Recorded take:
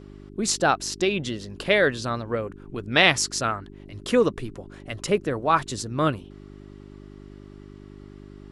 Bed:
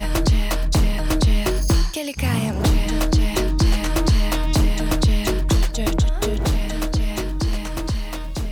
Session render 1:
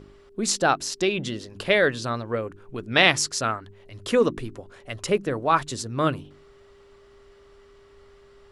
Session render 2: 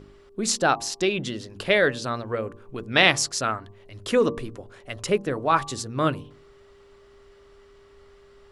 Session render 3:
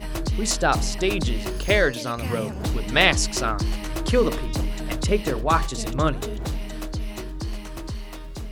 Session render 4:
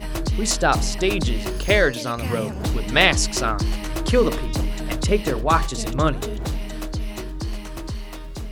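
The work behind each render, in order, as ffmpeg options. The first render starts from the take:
-af "bandreject=f=50:t=h:w=4,bandreject=f=100:t=h:w=4,bandreject=f=150:t=h:w=4,bandreject=f=200:t=h:w=4,bandreject=f=250:t=h:w=4,bandreject=f=300:t=h:w=4,bandreject=f=350:t=h:w=4"
-af "bandreject=f=115.8:t=h:w=4,bandreject=f=231.6:t=h:w=4,bandreject=f=347.4:t=h:w=4,bandreject=f=463.2:t=h:w=4,bandreject=f=579:t=h:w=4,bandreject=f=694.8:t=h:w=4,bandreject=f=810.6:t=h:w=4,bandreject=f=926.4:t=h:w=4,bandreject=f=1.0422k:t=h:w=4,bandreject=f=1.158k:t=h:w=4"
-filter_complex "[1:a]volume=-8.5dB[a];[0:a][a]amix=inputs=2:normalize=0"
-af "volume=2dB,alimiter=limit=-2dB:level=0:latency=1"

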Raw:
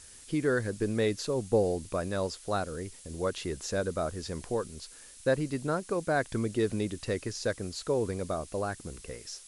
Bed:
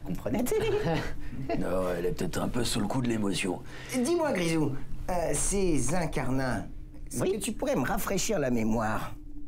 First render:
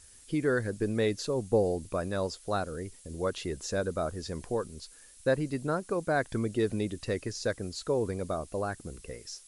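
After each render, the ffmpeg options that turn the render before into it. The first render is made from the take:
-af "afftdn=nr=6:nf=-51"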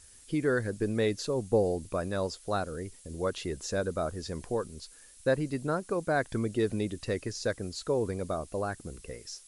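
-af anull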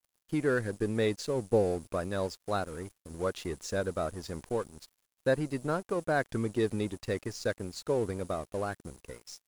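-af "aeval=exprs='sgn(val(0))*max(abs(val(0))-0.00473,0)':c=same"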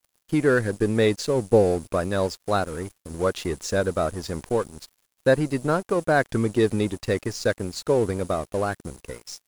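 -af "volume=8.5dB"

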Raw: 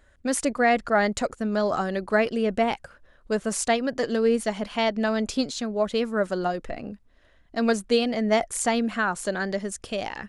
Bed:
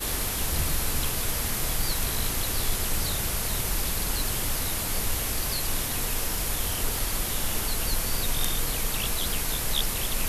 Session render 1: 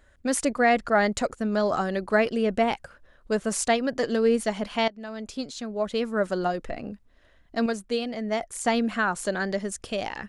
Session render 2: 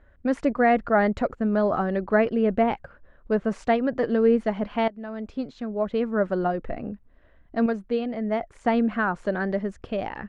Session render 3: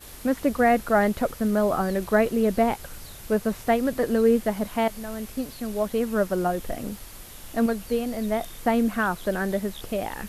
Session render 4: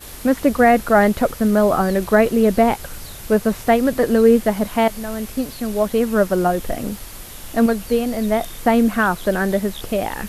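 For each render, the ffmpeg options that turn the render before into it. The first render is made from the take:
-filter_complex "[0:a]asplit=4[a][b][c][d];[a]atrim=end=4.88,asetpts=PTS-STARTPTS,afade=t=out:st=4.876:d=0.004:c=hsin:silence=0.112202[e];[b]atrim=start=4.88:end=7.662,asetpts=PTS-STARTPTS,afade=t=in:d=1.42:silence=0.112202[f];[c]atrim=start=7.658:end=8.662,asetpts=PTS-STARTPTS,volume=-6dB[g];[d]atrim=start=8.658[h];[e][f]concat=n=2:v=0:a=1[i];[i][g]acrossfade=d=0.004:c1=hsin:c2=hsin[j];[j][h]acrossfade=d=0.004:c1=hsin:c2=hsin"
-af "lowpass=2k,lowshelf=f=440:g=4"
-filter_complex "[1:a]volume=-14.5dB[a];[0:a][a]amix=inputs=2:normalize=0"
-af "volume=7dB,alimiter=limit=-3dB:level=0:latency=1"

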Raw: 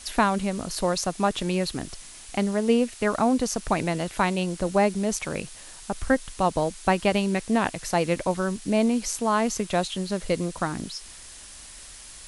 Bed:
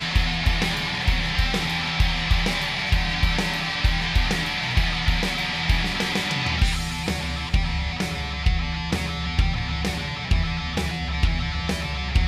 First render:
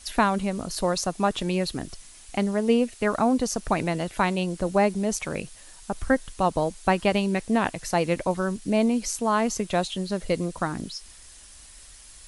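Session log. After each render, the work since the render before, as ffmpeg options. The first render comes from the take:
-af "afftdn=nr=6:nf=-44"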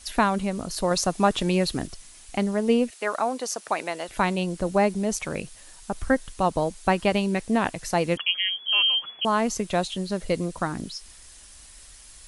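-filter_complex "[0:a]asettb=1/sr,asplit=3[a][b][c];[a]atrim=end=2.904[d];[b]atrim=start=2.9:end=4.09,asetpts=PTS-STARTPTS,afade=t=in:d=0.004:c=qsin,afade=t=out:st=1.186:d=0.004:c=qsin,highpass=500[e];[c]atrim=start=4.086[f];[d][e]acrossfade=d=0.004:c1=hsin:c2=qsin[g];[g][f]acrossfade=d=0.004:c1=qsin:c2=hsin,asettb=1/sr,asplit=3[h][i][j];[h]atrim=end=8.174[k];[i]atrim=start=8.17:end=9.25,asetpts=PTS-STARTPTS,afade=t=in:d=0.004:c=qsin,afade=t=out:st=1.076:d=0.004:c=qsin,lowpass=f=2.9k:t=q:w=0.5098,lowpass=f=2.9k:t=q:w=0.6013,lowpass=f=2.9k:t=q:w=0.9,lowpass=f=2.9k:t=q:w=2.563,afreqshift=-3400[l];[j]atrim=start=9.246[m];[k][l]acrossfade=d=0.004:c1=hsin:c2=qsin[n];[n][m]acrossfade=d=0.004:c1=qsin:c2=hsin,asplit=3[o][p][q];[o]atrim=end=0.912[r];[p]atrim=start=0.908:end=1.872,asetpts=PTS-STARTPTS,volume=3dB[s];[q]atrim=start=1.868[t];[r][s]acrossfade=d=0.004:c1=hsin:c2=hsin[u];[u][t]acrossfade=d=0.004:c1=hsin:c2=hsin"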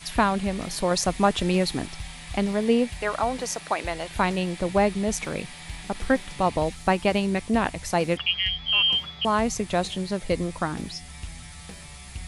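-filter_complex "[1:a]volume=-17dB[a];[0:a][a]amix=inputs=2:normalize=0"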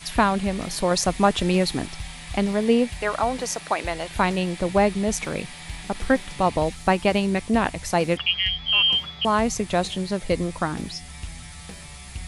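-af "volume=2dB"

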